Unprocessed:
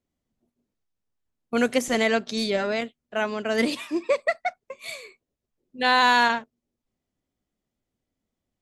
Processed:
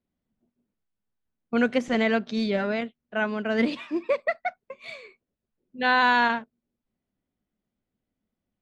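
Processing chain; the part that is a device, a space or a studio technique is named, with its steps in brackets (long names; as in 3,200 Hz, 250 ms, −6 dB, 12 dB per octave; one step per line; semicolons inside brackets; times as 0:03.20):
inside a cardboard box (low-pass filter 3,400 Hz 12 dB per octave; hollow resonant body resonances 200/1,500 Hz, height 6 dB)
level −2 dB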